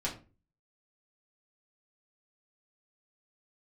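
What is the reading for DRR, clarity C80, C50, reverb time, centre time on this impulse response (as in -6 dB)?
-5.0 dB, 16.0 dB, 11.0 dB, 0.35 s, 18 ms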